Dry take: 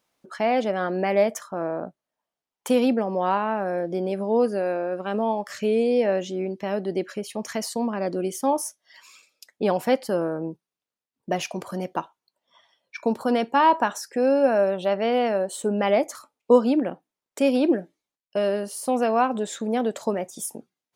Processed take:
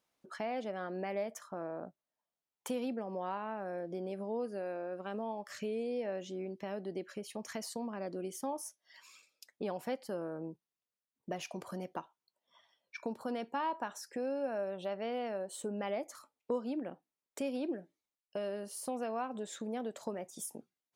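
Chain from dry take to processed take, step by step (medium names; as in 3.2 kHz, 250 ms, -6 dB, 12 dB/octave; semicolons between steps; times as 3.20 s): compression 2:1, threshold -32 dBFS, peak gain reduction 12 dB; trim -8 dB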